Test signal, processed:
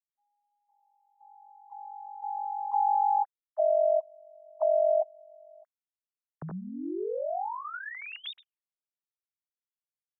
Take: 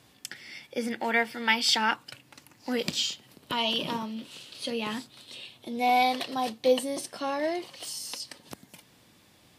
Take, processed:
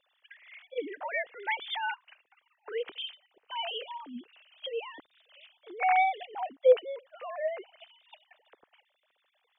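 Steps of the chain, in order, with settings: sine-wave speech; gain -3 dB

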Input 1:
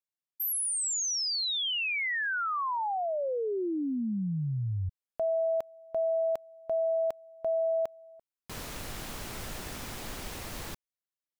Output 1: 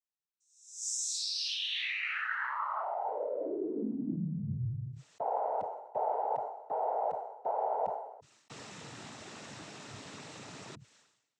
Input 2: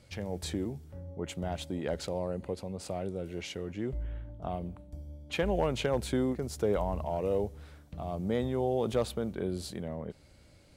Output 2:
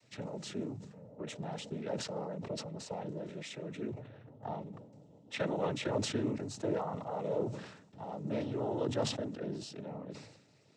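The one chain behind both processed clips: noise vocoder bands 12; sustainer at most 67 dB/s; gain -4.5 dB

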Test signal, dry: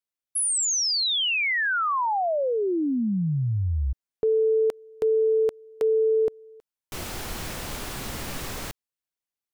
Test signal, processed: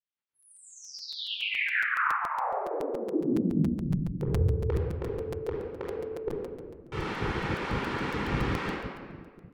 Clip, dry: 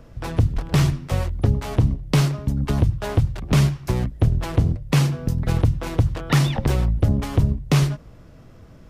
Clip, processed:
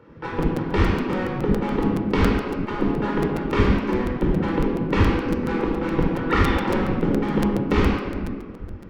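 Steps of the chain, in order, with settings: vibrato 7.3 Hz 6.2 cents; LPF 2100 Hz 12 dB/oct; shoebox room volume 2300 m³, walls mixed, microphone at 4.4 m; spectral gate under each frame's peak -10 dB weak; bell 650 Hz -8.5 dB 0.43 oct; crackling interface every 0.14 s, samples 256, repeat, from 0.42

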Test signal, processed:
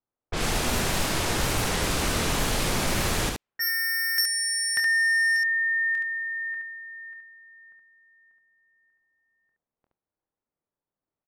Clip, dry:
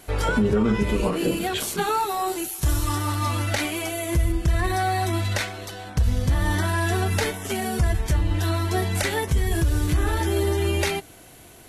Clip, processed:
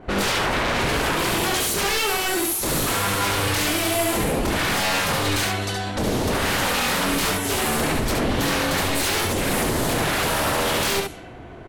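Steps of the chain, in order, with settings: wavefolder -27.5 dBFS; low-pass opened by the level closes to 850 Hz, open at -30.5 dBFS; early reflections 25 ms -10 dB, 71 ms -3.5 dB; gain +8.5 dB

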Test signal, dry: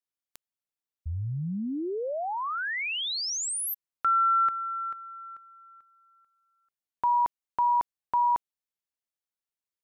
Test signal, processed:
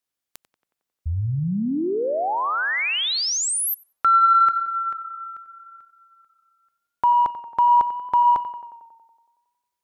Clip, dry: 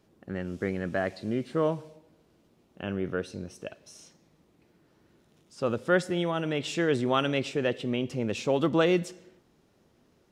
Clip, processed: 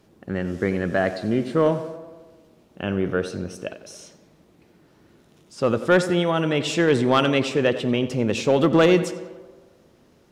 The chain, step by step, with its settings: in parallel at -4 dB: sine folder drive 3 dB, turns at -10 dBFS; on the sum: tape echo 91 ms, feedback 70%, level -11.5 dB, low-pass 2300 Hz; hard clip -9 dBFS

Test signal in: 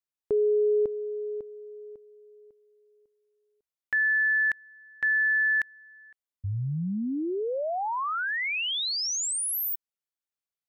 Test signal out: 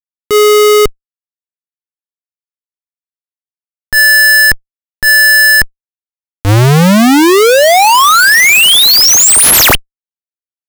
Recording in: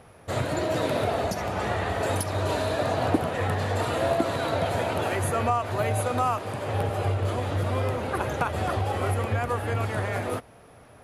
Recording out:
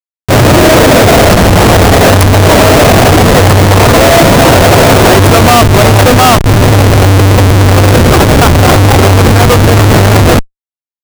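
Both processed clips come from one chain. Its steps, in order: Schmitt trigger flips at -28.5 dBFS; upward compressor, threshold -39 dBFS; maximiser +25 dB; gain -1 dB

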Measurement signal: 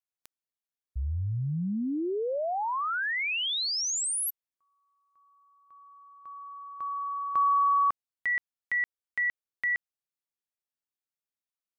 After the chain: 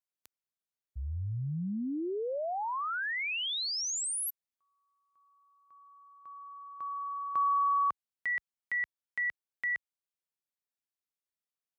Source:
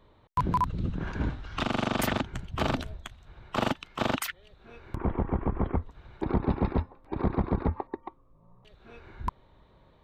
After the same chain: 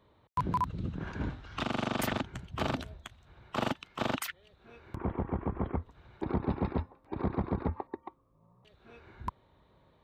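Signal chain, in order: HPF 60 Hz; gain -4 dB

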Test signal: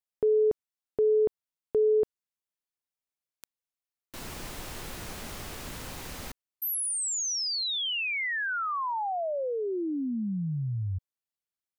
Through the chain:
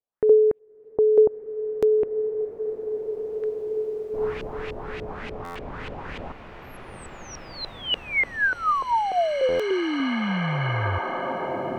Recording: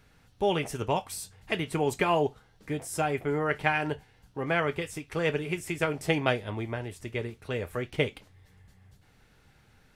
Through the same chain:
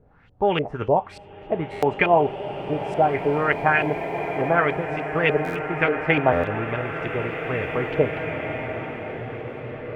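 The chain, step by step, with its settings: LFO low-pass saw up 3.4 Hz 460–2900 Hz; stuck buffer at 1.71/5.44/6.32/9.48, samples 512, times 9; bloom reverb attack 2.41 s, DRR 5 dB; gain +4 dB

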